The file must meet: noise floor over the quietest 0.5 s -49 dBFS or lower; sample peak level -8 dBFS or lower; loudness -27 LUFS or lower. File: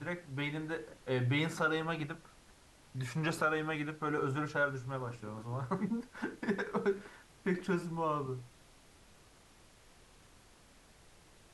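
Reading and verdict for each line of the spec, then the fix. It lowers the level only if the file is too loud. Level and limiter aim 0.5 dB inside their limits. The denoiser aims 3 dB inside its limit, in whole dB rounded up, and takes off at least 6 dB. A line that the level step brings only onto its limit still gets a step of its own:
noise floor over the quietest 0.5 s -61 dBFS: OK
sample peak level -19.5 dBFS: OK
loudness -36.0 LUFS: OK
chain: none

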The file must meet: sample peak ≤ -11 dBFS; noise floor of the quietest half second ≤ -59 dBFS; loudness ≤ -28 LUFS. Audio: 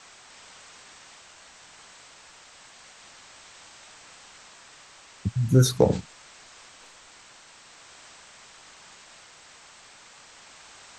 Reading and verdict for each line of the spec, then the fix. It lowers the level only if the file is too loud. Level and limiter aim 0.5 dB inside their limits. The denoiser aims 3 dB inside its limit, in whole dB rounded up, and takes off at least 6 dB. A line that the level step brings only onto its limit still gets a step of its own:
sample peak -4.5 dBFS: fail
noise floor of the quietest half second -51 dBFS: fail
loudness -23.0 LUFS: fail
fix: denoiser 6 dB, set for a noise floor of -51 dBFS; gain -5.5 dB; limiter -11.5 dBFS

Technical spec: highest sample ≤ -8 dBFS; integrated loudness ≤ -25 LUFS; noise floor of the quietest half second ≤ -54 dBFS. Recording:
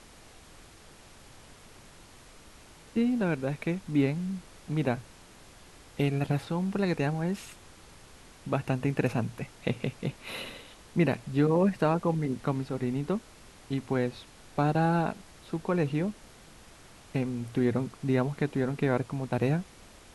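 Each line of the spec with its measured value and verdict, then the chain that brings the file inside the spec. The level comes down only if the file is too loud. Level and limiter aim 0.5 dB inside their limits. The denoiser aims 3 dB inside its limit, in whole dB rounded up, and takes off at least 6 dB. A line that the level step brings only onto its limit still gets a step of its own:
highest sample -11.5 dBFS: OK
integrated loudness -30.0 LUFS: OK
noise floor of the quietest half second -52 dBFS: fail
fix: denoiser 6 dB, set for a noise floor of -52 dBFS

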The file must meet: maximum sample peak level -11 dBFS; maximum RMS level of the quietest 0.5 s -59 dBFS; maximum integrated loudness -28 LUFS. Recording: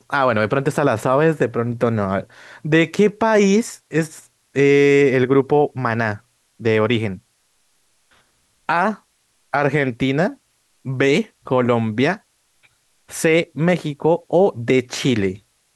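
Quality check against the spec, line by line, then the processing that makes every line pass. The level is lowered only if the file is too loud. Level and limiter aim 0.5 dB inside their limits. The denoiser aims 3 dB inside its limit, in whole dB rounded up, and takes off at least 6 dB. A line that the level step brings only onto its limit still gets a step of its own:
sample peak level -5.0 dBFS: fail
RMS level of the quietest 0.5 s -63 dBFS: OK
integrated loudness -18.5 LUFS: fail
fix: gain -10 dB

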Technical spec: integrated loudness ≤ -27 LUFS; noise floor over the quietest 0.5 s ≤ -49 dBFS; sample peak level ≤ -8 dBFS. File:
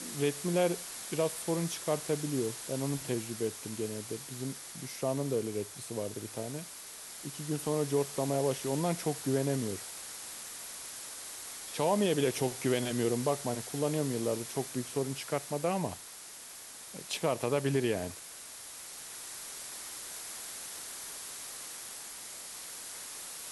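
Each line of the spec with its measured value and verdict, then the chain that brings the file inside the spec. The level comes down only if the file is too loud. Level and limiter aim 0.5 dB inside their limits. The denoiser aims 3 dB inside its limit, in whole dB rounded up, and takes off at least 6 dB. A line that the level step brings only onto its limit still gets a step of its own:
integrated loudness -34.5 LUFS: OK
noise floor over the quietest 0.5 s -48 dBFS: fail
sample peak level -15.5 dBFS: OK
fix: denoiser 6 dB, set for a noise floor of -48 dBFS

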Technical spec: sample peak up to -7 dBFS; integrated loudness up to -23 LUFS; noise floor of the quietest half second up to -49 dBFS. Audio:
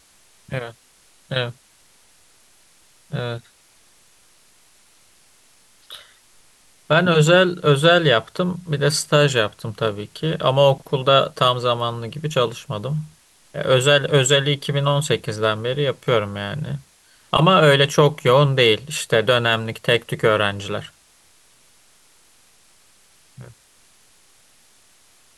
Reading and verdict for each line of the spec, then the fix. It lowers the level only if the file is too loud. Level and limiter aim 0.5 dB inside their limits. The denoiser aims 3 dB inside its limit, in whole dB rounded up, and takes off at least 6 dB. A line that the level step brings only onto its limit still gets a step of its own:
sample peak -3.5 dBFS: fail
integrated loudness -18.5 LUFS: fail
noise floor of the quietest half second -55 dBFS: OK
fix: gain -5 dB

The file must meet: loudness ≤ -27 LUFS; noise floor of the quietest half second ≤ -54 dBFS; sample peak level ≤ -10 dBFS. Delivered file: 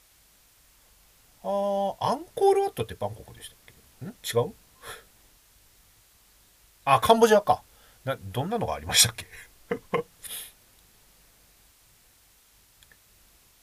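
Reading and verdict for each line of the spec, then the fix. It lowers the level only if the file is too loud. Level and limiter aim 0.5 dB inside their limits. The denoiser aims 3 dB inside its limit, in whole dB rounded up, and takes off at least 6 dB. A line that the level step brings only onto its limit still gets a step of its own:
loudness -25.5 LUFS: fail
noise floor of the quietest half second -60 dBFS: OK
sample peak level -4.5 dBFS: fail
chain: gain -2 dB; limiter -10.5 dBFS

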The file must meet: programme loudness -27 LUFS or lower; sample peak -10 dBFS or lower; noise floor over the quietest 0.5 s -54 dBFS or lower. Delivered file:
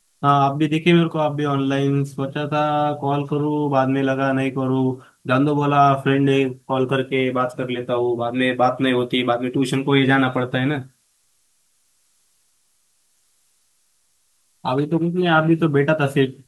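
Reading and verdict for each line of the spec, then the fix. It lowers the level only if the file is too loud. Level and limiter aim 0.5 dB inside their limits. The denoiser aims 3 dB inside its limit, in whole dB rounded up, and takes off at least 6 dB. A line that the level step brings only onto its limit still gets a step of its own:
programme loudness -19.5 LUFS: fail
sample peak -3.0 dBFS: fail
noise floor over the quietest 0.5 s -64 dBFS: OK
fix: gain -8 dB

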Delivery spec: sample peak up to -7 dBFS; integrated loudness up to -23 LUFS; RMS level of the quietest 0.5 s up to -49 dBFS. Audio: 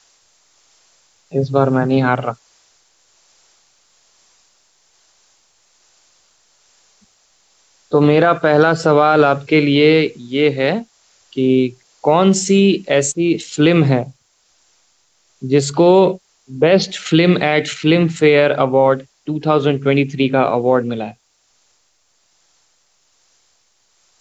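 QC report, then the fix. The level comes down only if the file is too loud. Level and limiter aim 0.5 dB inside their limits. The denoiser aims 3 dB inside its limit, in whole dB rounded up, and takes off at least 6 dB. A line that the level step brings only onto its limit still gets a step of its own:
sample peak -2.5 dBFS: fail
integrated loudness -15.0 LUFS: fail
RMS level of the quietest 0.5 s -61 dBFS: OK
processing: gain -8.5 dB

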